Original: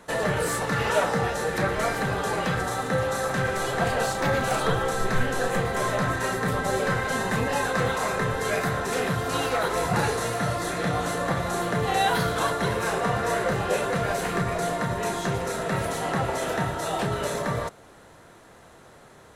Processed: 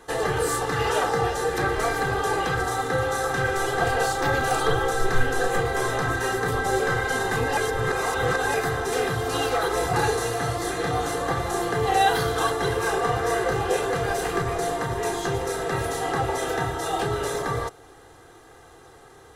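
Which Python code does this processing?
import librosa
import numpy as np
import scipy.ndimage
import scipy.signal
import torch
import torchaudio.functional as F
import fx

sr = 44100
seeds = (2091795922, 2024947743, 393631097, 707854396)

y = fx.edit(x, sr, fx.reverse_span(start_s=7.57, length_s=0.97), tone=tone)
y = fx.peak_eq(y, sr, hz=2300.0, db=-5.0, octaves=0.35)
y = y + 0.69 * np.pad(y, (int(2.5 * sr / 1000.0), 0))[:len(y)]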